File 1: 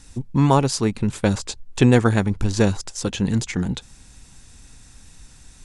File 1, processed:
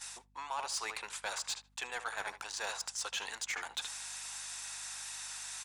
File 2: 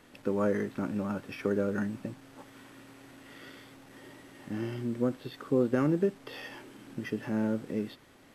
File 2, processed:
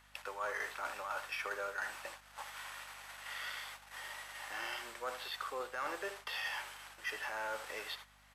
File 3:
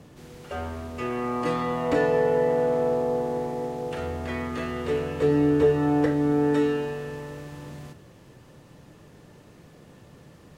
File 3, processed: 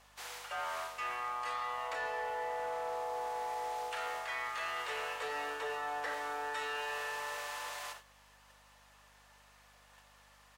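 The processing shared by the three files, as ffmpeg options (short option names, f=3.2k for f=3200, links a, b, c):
-filter_complex "[0:a]highpass=f=800:w=0.5412,highpass=f=800:w=1.3066,asplit=2[a][b];[b]adelay=77,lowpass=f=2.7k:p=1,volume=-13dB,asplit=2[c][d];[d]adelay=77,lowpass=f=2.7k:p=1,volume=0.22,asplit=2[e][f];[f]adelay=77,lowpass=f=2.7k:p=1,volume=0.22[g];[a][c][e][g]amix=inputs=4:normalize=0,agate=range=-12dB:threshold=-57dB:ratio=16:detection=peak,areverse,acompressor=threshold=-44dB:ratio=6,areverse,asoftclip=type=tanh:threshold=-37.5dB,aeval=exprs='val(0)+0.000141*(sin(2*PI*50*n/s)+sin(2*PI*2*50*n/s)/2+sin(2*PI*3*50*n/s)/3+sin(2*PI*4*50*n/s)/4+sin(2*PI*5*50*n/s)/5)':c=same,volume=9dB"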